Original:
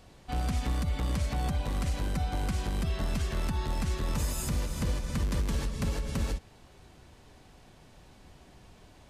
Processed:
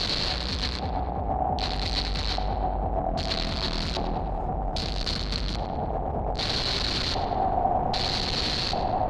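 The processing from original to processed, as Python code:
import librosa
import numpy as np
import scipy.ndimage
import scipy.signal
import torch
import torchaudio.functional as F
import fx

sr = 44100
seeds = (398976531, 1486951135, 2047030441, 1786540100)

y = np.sign(x) * np.sqrt(np.mean(np.square(x)))
y = fx.filter_lfo_lowpass(y, sr, shape='square', hz=0.63, low_hz=760.0, high_hz=4300.0, q=7.9)
y = fx.echo_filtered(y, sr, ms=103, feedback_pct=80, hz=2800.0, wet_db=-8.5)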